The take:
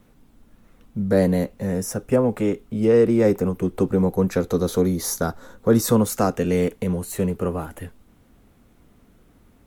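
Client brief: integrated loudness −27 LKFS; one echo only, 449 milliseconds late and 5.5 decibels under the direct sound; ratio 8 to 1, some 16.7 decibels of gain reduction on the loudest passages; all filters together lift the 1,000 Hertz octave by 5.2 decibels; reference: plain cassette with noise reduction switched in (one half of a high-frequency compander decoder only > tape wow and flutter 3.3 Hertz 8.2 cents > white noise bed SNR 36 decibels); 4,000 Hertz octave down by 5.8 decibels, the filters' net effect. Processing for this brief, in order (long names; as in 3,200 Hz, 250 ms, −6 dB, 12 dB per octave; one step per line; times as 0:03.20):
parametric band 1,000 Hz +7.5 dB
parametric band 4,000 Hz −8.5 dB
downward compressor 8 to 1, threshold −29 dBFS
single-tap delay 449 ms −5.5 dB
one half of a high-frequency compander decoder only
tape wow and flutter 3.3 Hz 8.2 cents
white noise bed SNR 36 dB
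level +6 dB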